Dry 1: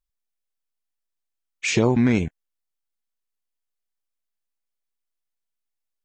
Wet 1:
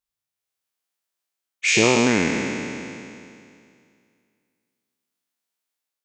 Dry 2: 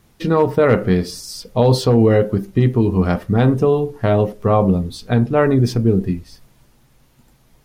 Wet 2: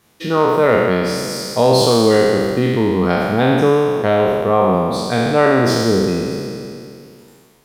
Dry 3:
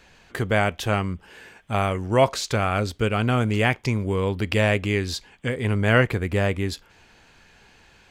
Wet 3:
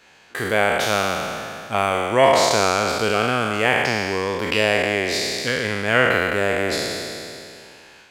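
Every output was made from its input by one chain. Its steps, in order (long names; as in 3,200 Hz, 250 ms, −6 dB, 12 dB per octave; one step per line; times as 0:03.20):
peak hold with a decay on every bin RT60 2.28 s
high-pass filter 340 Hz 6 dB per octave
automatic gain control gain up to 5 dB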